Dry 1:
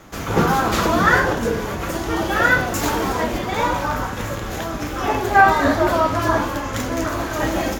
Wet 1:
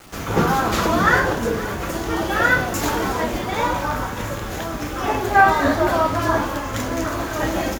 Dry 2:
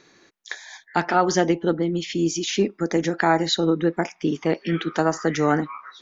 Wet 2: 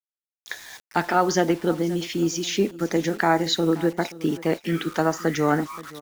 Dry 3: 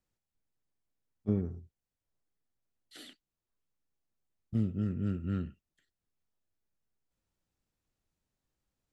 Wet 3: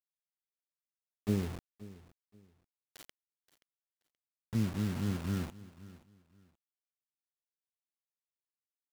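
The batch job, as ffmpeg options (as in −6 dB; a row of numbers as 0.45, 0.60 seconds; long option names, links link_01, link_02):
-af "acrusher=bits=6:mix=0:aa=0.000001,aecho=1:1:527|1054:0.119|0.0285,volume=-1dB"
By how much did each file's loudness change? −1.0, −1.0, −1.0 LU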